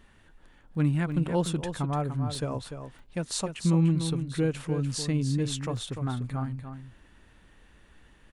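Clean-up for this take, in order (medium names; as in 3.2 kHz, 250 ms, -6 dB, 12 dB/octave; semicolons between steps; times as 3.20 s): de-click; interpolate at 0.75/1.12/1.46/2.35/3.06/5.77 s, 1.3 ms; inverse comb 295 ms -8.5 dB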